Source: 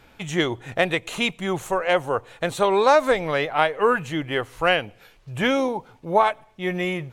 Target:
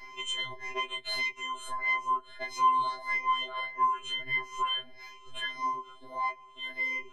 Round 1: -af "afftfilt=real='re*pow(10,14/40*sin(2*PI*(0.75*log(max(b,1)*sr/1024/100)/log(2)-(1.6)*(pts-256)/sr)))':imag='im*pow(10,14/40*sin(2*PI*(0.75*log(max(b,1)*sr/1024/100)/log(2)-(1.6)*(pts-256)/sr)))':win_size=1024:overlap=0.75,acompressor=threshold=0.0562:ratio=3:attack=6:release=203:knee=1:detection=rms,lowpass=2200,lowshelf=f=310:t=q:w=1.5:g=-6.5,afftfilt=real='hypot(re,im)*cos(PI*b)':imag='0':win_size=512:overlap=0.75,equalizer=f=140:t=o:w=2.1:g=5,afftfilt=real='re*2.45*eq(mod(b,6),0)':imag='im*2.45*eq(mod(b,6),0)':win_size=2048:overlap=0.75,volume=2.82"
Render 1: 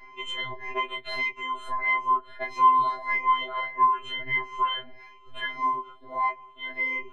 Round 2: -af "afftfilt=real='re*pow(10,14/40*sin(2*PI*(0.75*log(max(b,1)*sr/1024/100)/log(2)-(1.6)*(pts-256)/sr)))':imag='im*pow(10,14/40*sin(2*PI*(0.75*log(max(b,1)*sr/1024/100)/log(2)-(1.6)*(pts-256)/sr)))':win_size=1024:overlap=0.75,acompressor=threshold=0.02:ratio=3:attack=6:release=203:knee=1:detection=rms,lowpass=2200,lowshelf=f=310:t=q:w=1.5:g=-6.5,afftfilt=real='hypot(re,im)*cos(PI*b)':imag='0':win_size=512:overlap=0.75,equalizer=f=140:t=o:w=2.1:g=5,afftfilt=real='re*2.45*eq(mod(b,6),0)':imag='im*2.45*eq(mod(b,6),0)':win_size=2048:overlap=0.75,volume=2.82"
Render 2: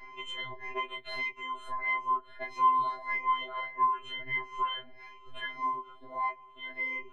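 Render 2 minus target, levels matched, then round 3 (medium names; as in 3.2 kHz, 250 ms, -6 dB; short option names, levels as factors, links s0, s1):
4 kHz band -5.5 dB
-af "afftfilt=real='re*pow(10,14/40*sin(2*PI*(0.75*log(max(b,1)*sr/1024/100)/log(2)-(1.6)*(pts-256)/sr)))':imag='im*pow(10,14/40*sin(2*PI*(0.75*log(max(b,1)*sr/1024/100)/log(2)-(1.6)*(pts-256)/sr)))':win_size=1024:overlap=0.75,acompressor=threshold=0.02:ratio=3:attack=6:release=203:knee=1:detection=rms,lowpass=5600,lowshelf=f=310:t=q:w=1.5:g=-6.5,afftfilt=real='hypot(re,im)*cos(PI*b)':imag='0':win_size=512:overlap=0.75,equalizer=f=140:t=o:w=2.1:g=5,afftfilt=real='re*2.45*eq(mod(b,6),0)':imag='im*2.45*eq(mod(b,6),0)':win_size=2048:overlap=0.75,volume=2.82"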